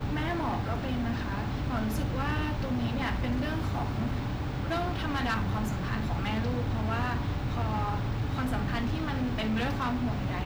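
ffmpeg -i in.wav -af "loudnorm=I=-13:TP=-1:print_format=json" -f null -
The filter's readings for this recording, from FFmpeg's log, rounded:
"input_i" : "-30.9",
"input_tp" : "-21.3",
"input_lra" : "0.6",
"input_thresh" : "-40.9",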